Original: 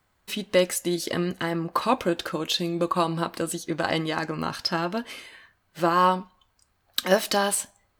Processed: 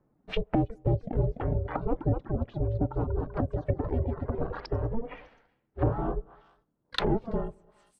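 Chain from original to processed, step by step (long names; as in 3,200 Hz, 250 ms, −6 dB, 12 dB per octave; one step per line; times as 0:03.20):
delay with pitch and tempo change per echo 352 ms, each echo +1 semitone, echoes 3, each echo −6 dB
ring modulation 230 Hz
low-pass that shuts in the quiet parts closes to 510 Hz, open at −23.5 dBFS
soft clipping −19.5 dBFS, distortion −11 dB
repeating echo 203 ms, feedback 28%, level −21.5 dB
reverb reduction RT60 1.5 s
treble cut that deepens with the level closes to 340 Hz, closed at −30 dBFS
parametric band 340 Hz −3 dB 0.42 octaves
level +8.5 dB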